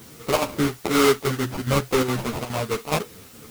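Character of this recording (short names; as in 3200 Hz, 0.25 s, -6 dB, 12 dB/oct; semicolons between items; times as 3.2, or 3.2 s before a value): aliases and images of a low sample rate 1700 Hz, jitter 20%; chopped level 2.4 Hz, depth 65%, duty 85%; a quantiser's noise floor 8-bit, dither triangular; a shimmering, thickened sound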